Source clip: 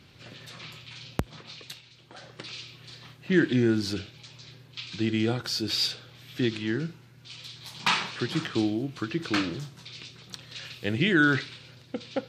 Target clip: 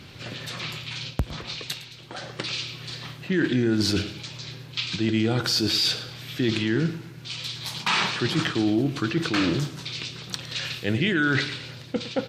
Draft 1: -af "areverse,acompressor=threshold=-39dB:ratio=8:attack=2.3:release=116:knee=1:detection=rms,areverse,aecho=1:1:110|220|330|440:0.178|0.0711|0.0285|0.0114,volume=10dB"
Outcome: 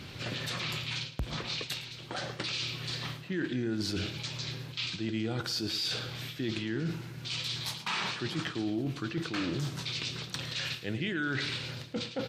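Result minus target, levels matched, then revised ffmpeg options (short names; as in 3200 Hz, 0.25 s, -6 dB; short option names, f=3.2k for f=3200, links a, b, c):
compressor: peak gain reduction +10 dB
-af "areverse,acompressor=threshold=-27.5dB:ratio=8:attack=2.3:release=116:knee=1:detection=rms,areverse,aecho=1:1:110|220|330|440:0.178|0.0711|0.0285|0.0114,volume=10dB"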